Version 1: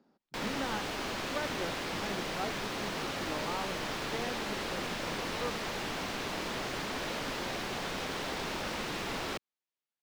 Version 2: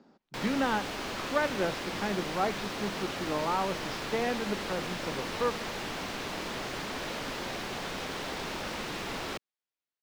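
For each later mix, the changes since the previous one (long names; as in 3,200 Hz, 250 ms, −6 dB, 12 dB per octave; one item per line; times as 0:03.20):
speech +9.0 dB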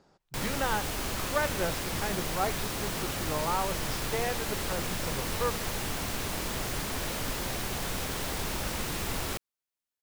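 speech: add parametric band 240 Hz −15 dB 0.64 octaves
master: remove three-way crossover with the lows and the highs turned down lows −13 dB, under 170 Hz, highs −16 dB, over 5,600 Hz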